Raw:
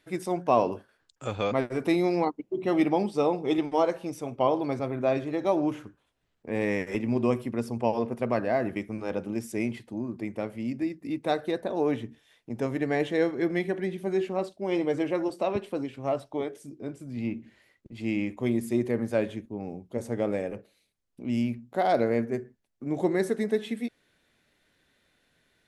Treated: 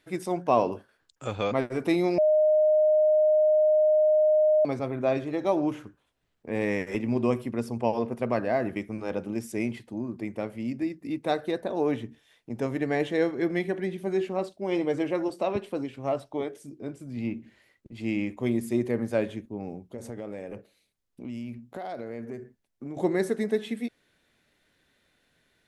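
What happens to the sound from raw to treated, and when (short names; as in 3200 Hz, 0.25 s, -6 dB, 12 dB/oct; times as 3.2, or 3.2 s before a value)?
2.18–4.65 bleep 615 Hz -17.5 dBFS
19.74–22.97 compressor, threshold -33 dBFS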